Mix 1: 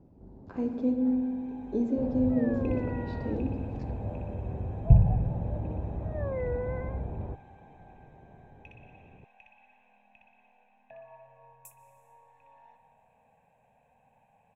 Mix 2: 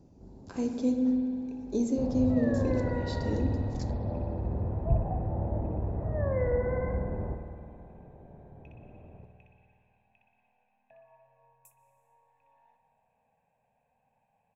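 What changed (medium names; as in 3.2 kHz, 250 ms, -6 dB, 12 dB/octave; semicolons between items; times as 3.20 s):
speech: remove low-pass 1.9 kHz 12 dB/octave; first sound: send on; second sound -8.5 dB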